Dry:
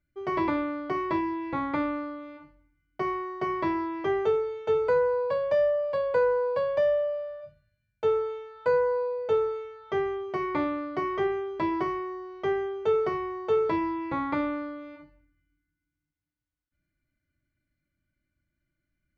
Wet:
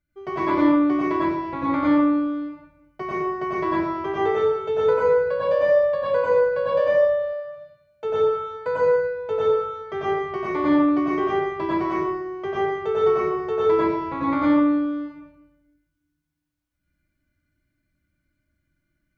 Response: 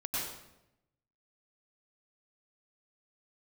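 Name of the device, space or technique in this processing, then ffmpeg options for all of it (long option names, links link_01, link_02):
bathroom: -filter_complex "[1:a]atrim=start_sample=2205[link_01];[0:a][link_01]afir=irnorm=-1:irlink=0,asettb=1/sr,asplit=3[link_02][link_03][link_04];[link_02]atrim=end=7.334[link_05];[link_03]atrim=start=7.33:end=8.1,asetpts=PTS-STARTPTS,afade=type=in:duration=0.004:curve=qsin,afade=type=out:start_time=0.766:duration=0.004:curve=qsin,highpass=frequency=230:poles=1[link_06];[link_04]atrim=start=8.096[link_07];[link_05][link_06]acrossfade=duration=0.004:curve1=hsin:curve2=qsin[link_08];[link_08][link_07]acrossfade=duration=0.004:curve1=qsin:curve2=hsin,volume=1.5dB"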